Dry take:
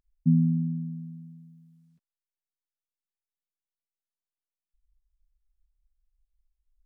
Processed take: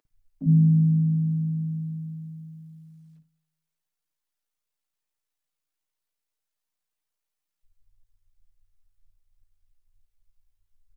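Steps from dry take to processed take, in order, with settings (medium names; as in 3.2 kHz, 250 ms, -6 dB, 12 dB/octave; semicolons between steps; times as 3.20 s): in parallel at +2.5 dB: compression 5:1, threshold -34 dBFS, peak gain reduction 15 dB; on the sum: doubling 37 ms -13 dB; granular stretch 1.6×, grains 35 ms; bands offset in time highs, lows 50 ms, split 260 Hz; on a send at -19.5 dB: reverberation RT60 0.70 s, pre-delay 3 ms; on the sum: short-mantissa float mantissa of 8-bit; trim +1 dB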